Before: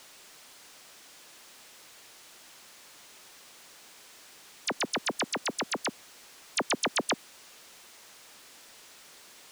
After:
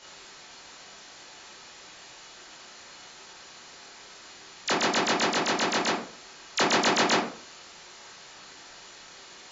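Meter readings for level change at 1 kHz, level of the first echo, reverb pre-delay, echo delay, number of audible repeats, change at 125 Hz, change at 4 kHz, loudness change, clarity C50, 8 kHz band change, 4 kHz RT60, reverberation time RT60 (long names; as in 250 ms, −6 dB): +8.5 dB, no echo audible, 16 ms, no echo audible, no echo audible, +8.5 dB, +6.5 dB, +6.5 dB, 3.5 dB, +4.0 dB, 0.30 s, 0.50 s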